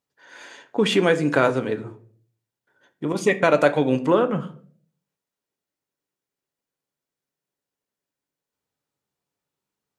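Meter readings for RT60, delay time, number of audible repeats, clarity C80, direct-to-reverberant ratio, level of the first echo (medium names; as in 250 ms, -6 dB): 0.50 s, no echo, no echo, 20.0 dB, 8.5 dB, no echo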